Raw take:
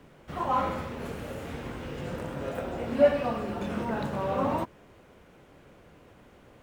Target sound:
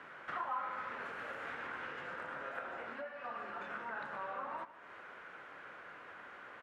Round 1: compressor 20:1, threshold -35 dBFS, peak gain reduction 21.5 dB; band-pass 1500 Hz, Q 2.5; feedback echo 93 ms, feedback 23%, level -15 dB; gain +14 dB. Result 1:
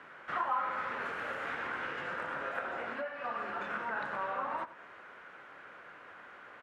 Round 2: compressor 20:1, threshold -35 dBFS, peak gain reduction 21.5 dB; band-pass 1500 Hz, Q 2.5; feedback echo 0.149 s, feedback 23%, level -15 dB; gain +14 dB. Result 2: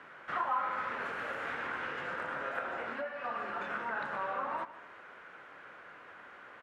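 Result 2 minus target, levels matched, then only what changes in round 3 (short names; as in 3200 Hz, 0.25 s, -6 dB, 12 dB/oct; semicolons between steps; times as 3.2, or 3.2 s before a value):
compressor: peak gain reduction -6 dB
change: compressor 20:1, threshold -41.5 dBFS, peak gain reduction 27.5 dB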